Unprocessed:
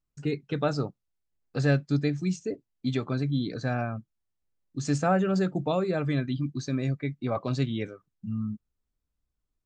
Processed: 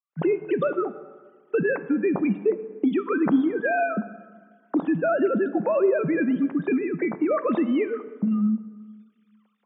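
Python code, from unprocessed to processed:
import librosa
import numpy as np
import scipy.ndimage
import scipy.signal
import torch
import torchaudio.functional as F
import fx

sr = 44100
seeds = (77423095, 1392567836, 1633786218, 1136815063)

y = fx.sine_speech(x, sr)
y = fx.recorder_agc(y, sr, target_db=-19.0, rise_db_per_s=70.0, max_gain_db=30)
y = scipy.signal.sosfilt(scipy.signal.butter(2, 220.0, 'highpass', fs=sr, output='sos'), y)
y = fx.high_shelf(y, sr, hz=2700.0, db=-10.5)
y = fx.rev_plate(y, sr, seeds[0], rt60_s=1.6, hf_ratio=0.6, predelay_ms=0, drr_db=12.5)
y = F.gain(torch.from_numpy(y), 3.5).numpy()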